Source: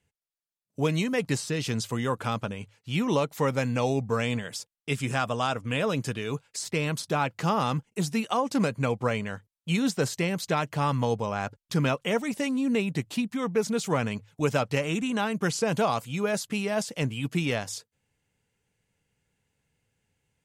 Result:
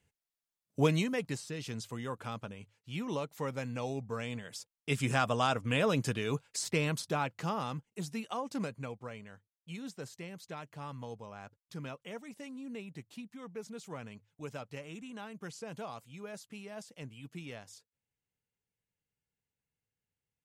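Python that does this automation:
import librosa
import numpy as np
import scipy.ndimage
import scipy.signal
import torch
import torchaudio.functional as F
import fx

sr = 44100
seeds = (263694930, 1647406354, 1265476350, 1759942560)

y = fx.gain(x, sr, db=fx.line((0.82, -0.5), (1.38, -11.0), (4.37, -11.0), (5.02, -2.0), (6.68, -2.0), (7.72, -11.0), (8.61, -11.0), (9.06, -17.5)))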